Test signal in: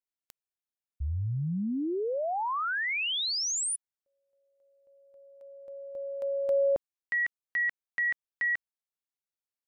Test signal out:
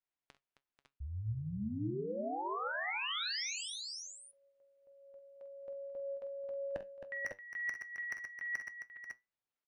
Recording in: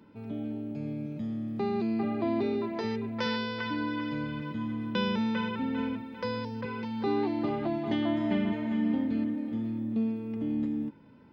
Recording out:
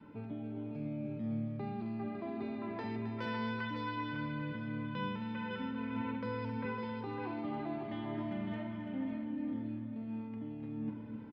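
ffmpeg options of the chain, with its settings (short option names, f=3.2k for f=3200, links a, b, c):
-filter_complex "[0:a]lowpass=2.9k,adynamicequalizer=threshold=0.00708:dfrequency=410:dqfactor=1.7:tfrequency=410:tqfactor=1.7:attack=5:release=100:ratio=0.375:range=2.5:mode=cutabove:tftype=bell,areverse,acompressor=threshold=-42dB:ratio=20:attack=90:release=113:knee=1:detection=rms,areverse,asoftclip=type=hard:threshold=-32dB,flanger=delay=6.6:depth=4.2:regen=72:speed=0.21:shape=triangular,asplit=2[a][b];[b]aecho=0:1:46|66|266|488|549|557:0.282|0.112|0.299|0.237|0.266|0.398[c];[a][c]amix=inputs=2:normalize=0,volume=6.5dB"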